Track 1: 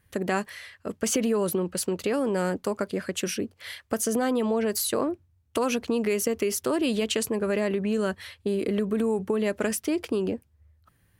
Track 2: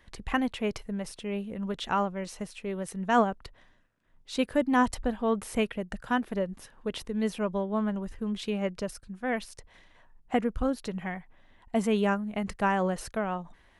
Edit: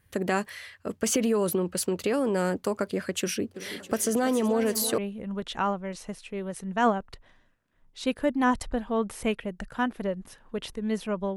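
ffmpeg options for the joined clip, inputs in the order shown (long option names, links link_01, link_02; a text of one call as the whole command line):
ffmpeg -i cue0.wav -i cue1.wav -filter_complex "[0:a]asplit=3[link_01][link_02][link_03];[link_01]afade=type=out:start_time=3.54:duration=0.02[link_04];[link_02]aecho=1:1:331|662|993|1324|1655|1986:0.251|0.146|0.0845|0.049|0.0284|0.0165,afade=type=in:start_time=3.54:duration=0.02,afade=type=out:start_time=4.98:duration=0.02[link_05];[link_03]afade=type=in:start_time=4.98:duration=0.02[link_06];[link_04][link_05][link_06]amix=inputs=3:normalize=0,apad=whole_dur=11.36,atrim=end=11.36,atrim=end=4.982[link_07];[1:a]atrim=start=1.298:end=7.68[link_08];[link_07][link_08]acrossfade=duration=0.004:curve1=hsin:curve2=hsin" out.wav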